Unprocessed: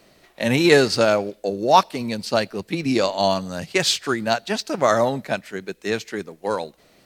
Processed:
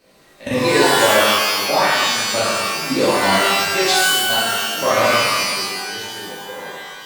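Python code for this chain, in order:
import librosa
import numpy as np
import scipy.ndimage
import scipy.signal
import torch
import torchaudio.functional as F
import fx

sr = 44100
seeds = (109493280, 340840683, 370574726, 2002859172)

y = fx.low_shelf(x, sr, hz=240.0, db=-9.5, at=(0.53, 1.03), fade=0.02)
y = fx.level_steps(y, sr, step_db=19)
y = fx.rev_shimmer(y, sr, seeds[0], rt60_s=1.4, semitones=12, shimmer_db=-2, drr_db=-10.0)
y = y * 10.0 ** (-5.0 / 20.0)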